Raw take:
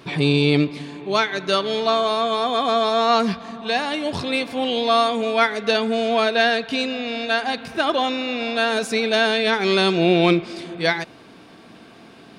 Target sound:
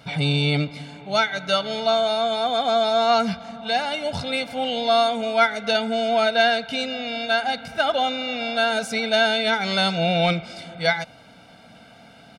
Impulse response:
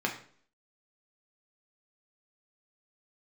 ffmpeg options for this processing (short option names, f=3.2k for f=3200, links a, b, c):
-af "aecho=1:1:1.4:0.88,volume=-4dB"